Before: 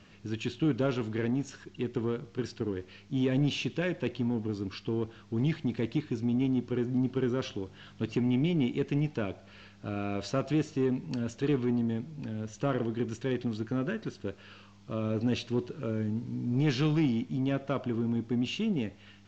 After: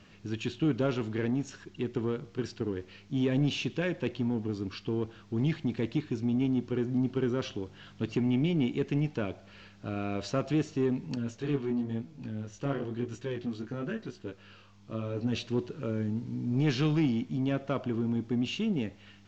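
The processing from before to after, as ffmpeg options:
ffmpeg -i in.wav -filter_complex "[0:a]asettb=1/sr,asplit=3[link_01][link_02][link_03];[link_01]atrim=end=11.154[link_04];[link_02]atrim=start=11.15:end=15.35,asetpts=PTS-STARTPTS,afade=type=in:duration=0.004:curve=qsin,afade=type=out:start_time=4.196:duration=0.004:curve=qsin,flanger=delay=16:depth=6:speed=1[link_05];[link_03]atrim=start=15.346[link_06];[link_04][link_05]acrossfade=duration=0.004:curve1=hsin:curve2=qsin[link_07];[link_07][link_06]acrossfade=duration=0.004:curve1=qsin:curve2=hsin" out.wav

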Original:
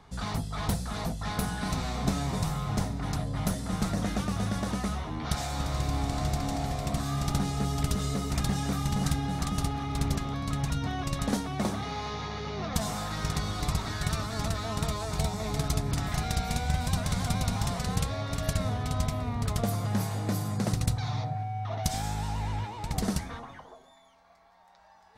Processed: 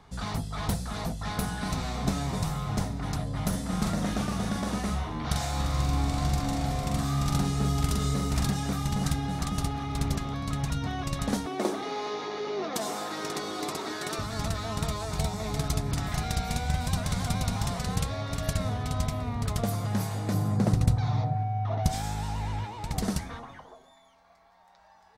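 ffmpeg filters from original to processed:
ffmpeg -i in.wav -filter_complex "[0:a]asplit=3[link_01][link_02][link_03];[link_01]afade=type=out:start_time=3.52:duration=0.02[link_04];[link_02]asplit=2[link_05][link_06];[link_06]adelay=44,volume=-4dB[link_07];[link_05][link_07]amix=inputs=2:normalize=0,afade=type=in:start_time=3.52:duration=0.02,afade=type=out:start_time=8.5:duration=0.02[link_08];[link_03]afade=type=in:start_time=8.5:duration=0.02[link_09];[link_04][link_08][link_09]amix=inputs=3:normalize=0,asettb=1/sr,asplit=3[link_10][link_11][link_12];[link_10]atrim=end=11.464[link_13];[link_11]atrim=start=11.46:end=14.19,asetpts=PTS-STARTPTS,afade=type=in:duration=0.004:curve=qsin,afade=type=out:start_time=2.726:duration=0.004:curve=qsin,highpass=frequency=350:width_type=q:width=3[link_14];[link_12]atrim=start=14.186[link_15];[link_13][link_14]acrossfade=duration=0.004:curve1=hsin:curve2=qsin[link_16];[link_16][link_15]acrossfade=duration=0.004:curve1=qsin:curve2=hsin,asettb=1/sr,asplit=3[link_17][link_18][link_19];[link_17]atrim=end=20.344[link_20];[link_18]atrim=start=20.34:end=21.93,asetpts=PTS-STARTPTS,afade=type=in:duration=0.004:curve=qsin,afade=type=out:start_time=1.586:duration=0.004:curve=qsin,tiltshelf=frequency=1400:gain=5[link_21];[link_19]atrim=start=21.926[link_22];[link_20][link_21]acrossfade=duration=0.004:curve1=hsin:curve2=qsin[link_23];[link_23][link_22]acrossfade=duration=0.004:curve1=qsin:curve2=hsin" out.wav

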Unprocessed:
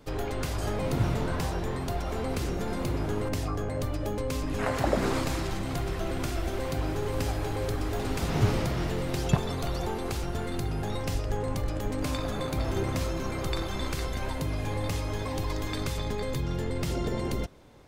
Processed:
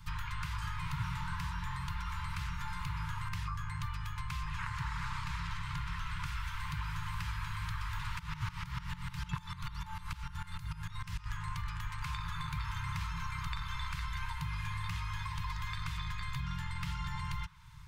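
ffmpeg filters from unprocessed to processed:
ffmpeg -i in.wav -filter_complex "[0:a]asettb=1/sr,asplit=3[link_01][link_02][link_03];[link_01]atrim=end=4.494[link_04];[link_02]atrim=start=4.49:end=6.26,asetpts=PTS-STARTPTS,afade=type=in:duration=0.004:curve=qsin,afade=type=out:start_time=1.766:duration=0.004:curve=qsin,highshelf=frequency=9800:gain=-10.5[link_05];[link_03]atrim=start=6.256[link_06];[link_04][link_05]acrossfade=duration=0.004:curve1=hsin:curve2=qsin[link_07];[link_07][link_06]acrossfade=duration=0.004:curve1=qsin:curve2=hsin,asettb=1/sr,asplit=3[link_08][link_09][link_10];[link_08]atrim=end=8.194[link_11];[link_09]atrim=start=8.19:end=11.26,asetpts=PTS-STARTPTS,afade=type=in:duration=0.004:curve=qsin,afade=type=out:start_time=3.066:duration=0.004:curve=qsin,aeval=exprs='val(0)*pow(10,-18*if(lt(mod(-6.7*n/s,1),2*abs(-6.7)/1000),1-mod(-6.7*n/s,1)/(2*abs(-6.7)/1000),(mod(-6.7*n/s,1)-2*abs(-6.7)/1000)/(1-2*abs(-6.7)/1000))/20)':channel_layout=same[link_12];[link_10]atrim=start=11.256[link_13];[link_11][link_12]acrossfade=duration=0.004:curve1=hsin:curve2=qsin[link_14];[link_14][link_13]acrossfade=duration=0.004:curve1=qsin:curve2=hsin,lowshelf=frequency=160:gain=7.5,afftfilt=real='re*(1-between(b*sr/4096,180,870))':imag='im*(1-between(b*sr/4096,180,870))':win_size=4096:overlap=0.75,acrossover=split=260|3600[link_15][link_16][link_17];[link_15]acompressor=threshold=-40dB:ratio=4[link_18];[link_16]acompressor=threshold=-41dB:ratio=4[link_19];[link_17]acompressor=threshold=-60dB:ratio=4[link_20];[link_18][link_19][link_20]amix=inputs=3:normalize=0,volume=1dB" out.wav

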